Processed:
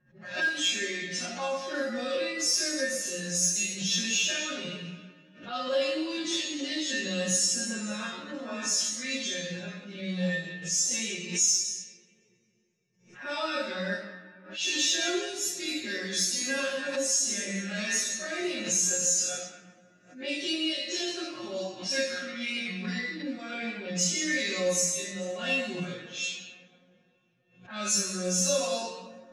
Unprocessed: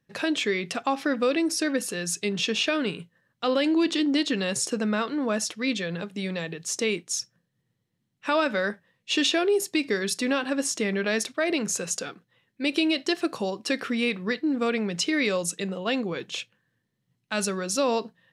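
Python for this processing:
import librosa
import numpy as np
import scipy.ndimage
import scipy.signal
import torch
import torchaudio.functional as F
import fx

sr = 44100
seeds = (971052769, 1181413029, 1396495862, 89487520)

p1 = fx.graphic_eq_15(x, sr, hz=(400, 1000, 6300), db=(-7, -6, 11))
p2 = fx.rev_double_slope(p1, sr, seeds[0], early_s=0.68, late_s=2.3, knee_db=-18, drr_db=-7.5)
p3 = fx.stretch_vocoder_free(p2, sr, factor=1.6)
p4 = fx.comb_fb(p3, sr, f0_hz=180.0, decay_s=0.21, harmonics='all', damping=0.0, mix_pct=90)
p5 = np.clip(p4, -10.0 ** (-24.5 / 20.0), 10.0 ** (-24.5 / 20.0))
p6 = p4 + (p5 * librosa.db_to_amplitude(-11.0))
p7 = fx.env_lowpass(p6, sr, base_hz=1400.0, full_db=-25.0)
p8 = fx.doubler(p7, sr, ms=26.0, db=-12.0)
p9 = fx.pre_swell(p8, sr, db_per_s=120.0)
y = p9 * librosa.db_to_amplitude(-2.0)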